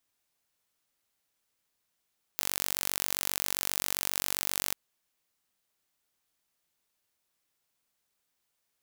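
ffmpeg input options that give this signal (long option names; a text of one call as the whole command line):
ffmpeg -f lavfi -i "aevalsrc='0.708*eq(mod(n,928),0)':duration=2.34:sample_rate=44100" out.wav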